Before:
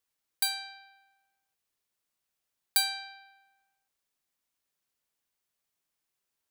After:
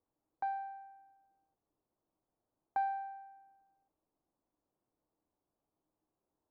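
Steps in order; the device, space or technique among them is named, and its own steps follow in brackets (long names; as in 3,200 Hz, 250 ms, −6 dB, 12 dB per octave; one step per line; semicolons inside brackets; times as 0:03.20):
under water (low-pass filter 930 Hz 24 dB per octave; parametric band 310 Hz +9 dB 0.25 octaves)
level +8 dB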